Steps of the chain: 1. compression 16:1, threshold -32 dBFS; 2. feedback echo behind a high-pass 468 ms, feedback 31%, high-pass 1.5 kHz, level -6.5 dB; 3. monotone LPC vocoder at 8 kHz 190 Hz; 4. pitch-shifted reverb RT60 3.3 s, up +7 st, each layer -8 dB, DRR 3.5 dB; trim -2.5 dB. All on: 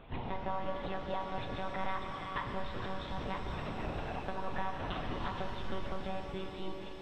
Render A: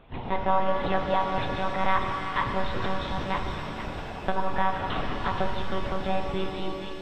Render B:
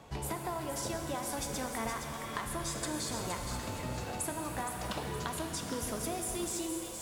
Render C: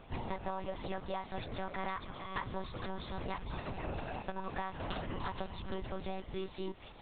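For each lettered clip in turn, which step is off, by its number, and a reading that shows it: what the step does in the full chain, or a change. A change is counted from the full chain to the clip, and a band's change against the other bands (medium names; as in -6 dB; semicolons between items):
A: 1, mean gain reduction 8.0 dB; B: 3, 4 kHz band +4.0 dB; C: 4, loudness change -2.0 LU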